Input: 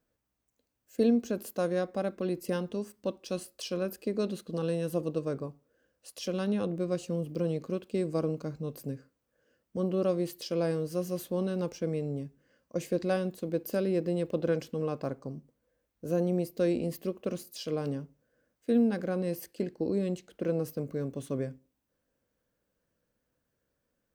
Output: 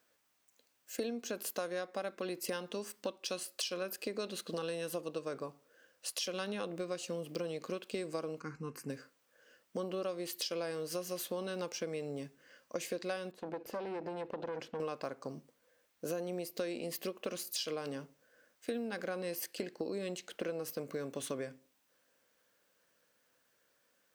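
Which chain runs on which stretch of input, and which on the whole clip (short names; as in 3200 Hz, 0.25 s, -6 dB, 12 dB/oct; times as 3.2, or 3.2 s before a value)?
8.4–8.9 air absorption 61 m + fixed phaser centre 1500 Hz, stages 4
13.31–14.8 compressor, threshold -29 dBFS + tube stage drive 33 dB, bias 0.55 + LPF 1100 Hz 6 dB/oct
whole clip: HPF 1500 Hz 6 dB/oct; high shelf 7100 Hz -5 dB; compressor 6:1, threshold -49 dBFS; gain +13.5 dB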